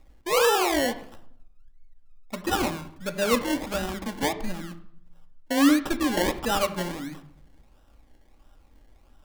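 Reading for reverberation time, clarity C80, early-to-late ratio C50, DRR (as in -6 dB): 0.65 s, 16.0 dB, 13.5 dB, 7.0 dB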